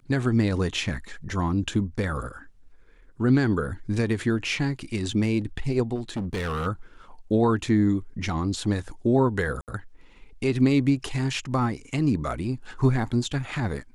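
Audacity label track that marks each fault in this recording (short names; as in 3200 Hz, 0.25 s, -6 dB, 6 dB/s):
5.950000	6.670000	clipped -25.5 dBFS
9.610000	9.680000	gap 68 ms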